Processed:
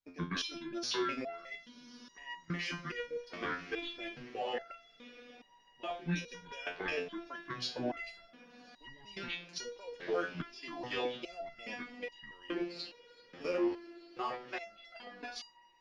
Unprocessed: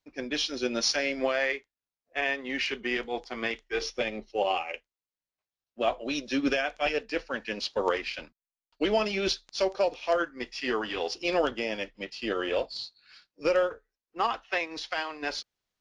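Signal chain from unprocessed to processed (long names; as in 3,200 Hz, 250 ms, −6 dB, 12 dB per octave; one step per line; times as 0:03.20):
pitch shifter gated in a rhythm −7.5 semitones, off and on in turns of 181 ms
brickwall limiter −24 dBFS, peak gain reduction 10 dB
output level in coarse steps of 12 dB
feedback delay with all-pass diffusion 1,192 ms, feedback 61%, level −16 dB
step-sequenced resonator 2.4 Hz 88–950 Hz
level +11 dB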